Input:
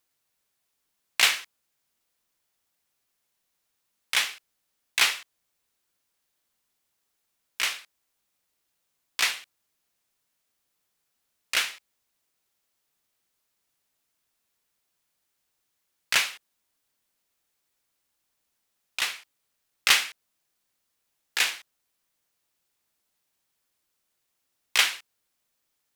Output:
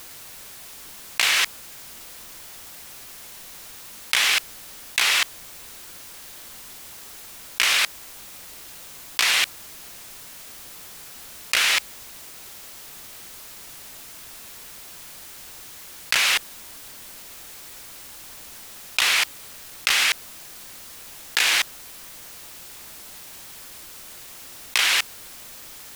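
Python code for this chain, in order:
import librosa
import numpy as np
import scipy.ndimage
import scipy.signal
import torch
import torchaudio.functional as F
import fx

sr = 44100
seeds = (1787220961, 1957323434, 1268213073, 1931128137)

y = fx.low_shelf(x, sr, hz=65.0, db=5.5)
y = fx.env_flatten(y, sr, amount_pct=100)
y = y * librosa.db_to_amplitude(-4.0)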